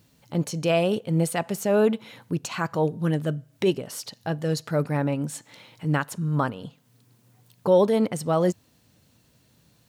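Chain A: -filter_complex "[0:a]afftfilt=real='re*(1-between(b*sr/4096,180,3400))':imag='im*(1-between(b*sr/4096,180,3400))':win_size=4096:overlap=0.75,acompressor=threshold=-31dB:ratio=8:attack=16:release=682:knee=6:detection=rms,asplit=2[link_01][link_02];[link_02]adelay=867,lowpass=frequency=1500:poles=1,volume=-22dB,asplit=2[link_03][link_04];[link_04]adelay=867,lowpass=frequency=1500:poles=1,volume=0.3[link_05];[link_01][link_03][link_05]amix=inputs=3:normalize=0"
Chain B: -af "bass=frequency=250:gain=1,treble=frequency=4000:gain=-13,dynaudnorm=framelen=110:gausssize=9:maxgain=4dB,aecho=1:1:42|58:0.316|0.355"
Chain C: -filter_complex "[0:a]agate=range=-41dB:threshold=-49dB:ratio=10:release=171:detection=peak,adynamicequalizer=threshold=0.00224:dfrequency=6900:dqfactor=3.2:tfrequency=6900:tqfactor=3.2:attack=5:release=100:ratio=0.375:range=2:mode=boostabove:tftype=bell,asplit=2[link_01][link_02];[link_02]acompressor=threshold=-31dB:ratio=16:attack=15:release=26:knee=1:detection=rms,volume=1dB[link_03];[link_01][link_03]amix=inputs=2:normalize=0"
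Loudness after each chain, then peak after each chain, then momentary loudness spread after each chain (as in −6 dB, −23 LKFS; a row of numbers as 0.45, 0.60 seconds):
−38.0, −20.5, −22.5 LKFS; −24.0, −3.0, −7.0 dBFS; 18, 12, 9 LU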